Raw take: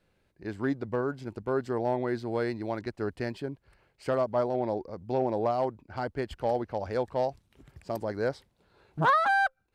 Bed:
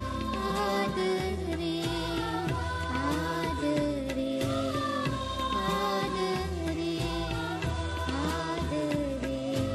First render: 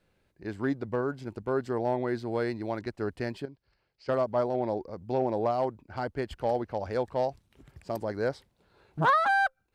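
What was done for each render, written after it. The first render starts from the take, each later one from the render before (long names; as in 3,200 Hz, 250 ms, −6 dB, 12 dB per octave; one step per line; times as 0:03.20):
0:03.45–0:04.09: transistor ladder low-pass 5,600 Hz, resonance 60%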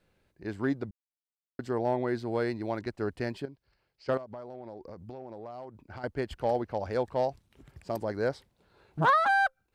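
0:00.91–0:01.59: silence
0:04.17–0:06.04: downward compressor 8 to 1, threshold −39 dBFS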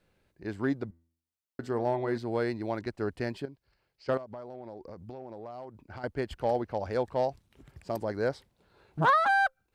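0:00.84–0:02.18: hum removal 83.17 Hz, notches 40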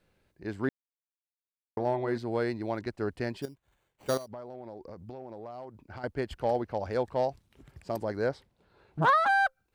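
0:00.69–0:01.77: silence
0:03.42–0:04.28: sample-rate reduction 5,200 Hz
0:08.26–0:09.02: high-shelf EQ 5,100 Hz −7 dB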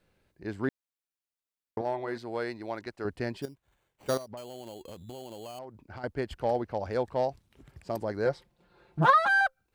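0:01.81–0:03.05: low-shelf EQ 330 Hz −10.5 dB
0:04.37–0:05.59: sample-rate reduction 3,700 Hz
0:08.25–0:09.41: comb filter 5.7 ms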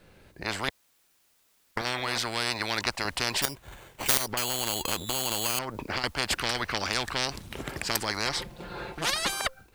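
automatic gain control gain up to 13 dB
every bin compressed towards the loudest bin 10 to 1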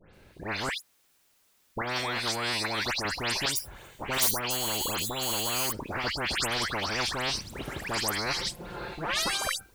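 all-pass dispersion highs, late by 141 ms, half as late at 2,900 Hz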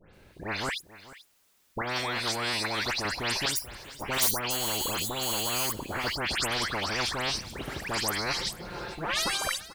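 single-tap delay 437 ms −17.5 dB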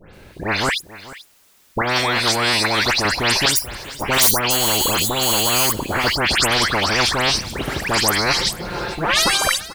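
level +12 dB
brickwall limiter −2 dBFS, peak gain reduction 2.5 dB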